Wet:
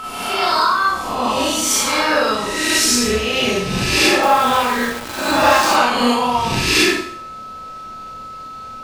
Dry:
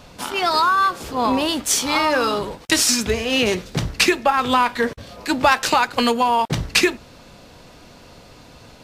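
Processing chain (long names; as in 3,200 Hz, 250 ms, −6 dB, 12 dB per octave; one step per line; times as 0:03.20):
peak hold with a rise ahead of every peak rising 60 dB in 1.09 s
steady tone 1,300 Hz −20 dBFS
four-comb reverb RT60 0.59 s, combs from 29 ms, DRR −5.5 dB
0:04.23–0:05.76: centre clipping without the shift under −15.5 dBFS
level −7.5 dB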